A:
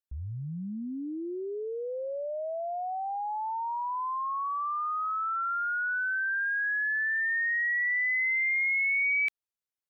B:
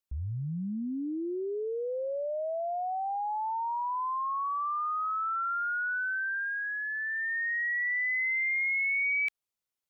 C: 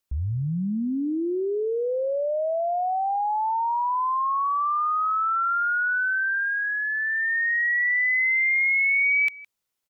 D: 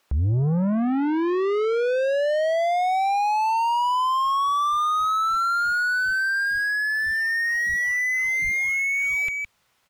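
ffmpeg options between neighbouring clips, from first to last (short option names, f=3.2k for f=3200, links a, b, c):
-filter_complex "[0:a]asplit=2[a][b];[b]alimiter=level_in=10.5dB:limit=-24dB:level=0:latency=1:release=18,volume=-10.5dB,volume=3dB[c];[a][c]amix=inputs=2:normalize=0,equalizer=f=1.7k:w=7.1:g=-4.5,volume=-4.5dB"
-af "aecho=1:1:163:0.0891,volume=7.5dB"
-filter_complex "[0:a]asplit=2[a][b];[b]highpass=f=720:p=1,volume=31dB,asoftclip=type=tanh:threshold=-16.5dB[c];[a][c]amix=inputs=2:normalize=0,lowpass=f=1.3k:p=1,volume=-6dB,asubboost=boost=6.5:cutoff=130,volume=1.5dB"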